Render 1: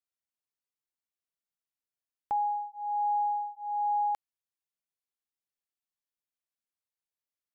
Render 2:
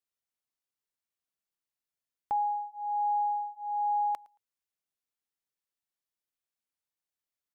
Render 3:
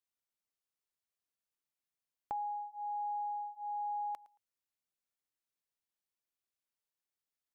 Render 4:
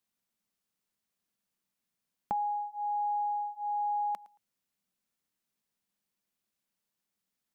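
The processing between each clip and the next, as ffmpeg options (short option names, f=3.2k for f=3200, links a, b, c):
-af "aecho=1:1:112|224:0.0631|0.0101"
-af "acompressor=threshold=-35dB:ratio=3,volume=-3dB"
-af "equalizer=f=200:t=o:w=0.66:g=13,volume=6dB"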